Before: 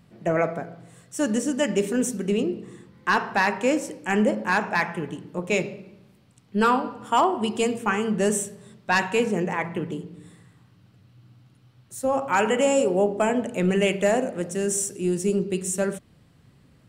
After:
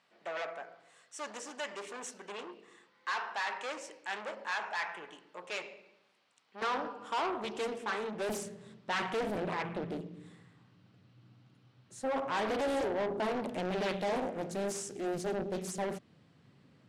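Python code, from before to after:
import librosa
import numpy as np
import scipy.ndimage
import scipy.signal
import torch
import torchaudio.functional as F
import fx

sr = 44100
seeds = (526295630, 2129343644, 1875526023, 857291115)

y = 10.0 ** (-25.0 / 20.0) * np.tanh(x / 10.0 ** (-25.0 / 20.0))
y = fx.bandpass_edges(y, sr, low_hz=fx.steps((0.0, 780.0), (6.62, 350.0), (8.29, 140.0)), high_hz=5900.0)
y = fx.doppler_dist(y, sr, depth_ms=0.89)
y = y * 10.0 ** (-4.0 / 20.0)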